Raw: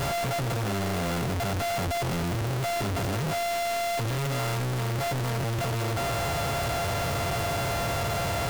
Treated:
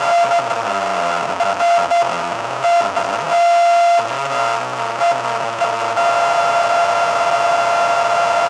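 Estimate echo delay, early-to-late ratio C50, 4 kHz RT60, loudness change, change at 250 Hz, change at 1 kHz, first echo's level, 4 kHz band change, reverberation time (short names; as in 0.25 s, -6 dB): 80 ms, none, none, +12.5 dB, -1.5 dB, +16.5 dB, -13.0 dB, +8.0 dB, none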